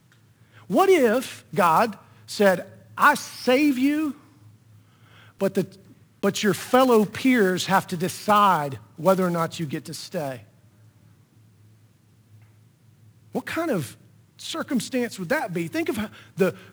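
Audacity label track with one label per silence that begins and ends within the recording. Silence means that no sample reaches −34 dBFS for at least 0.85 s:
4.110000	5.410000	silence
10.370000	13.350000	silence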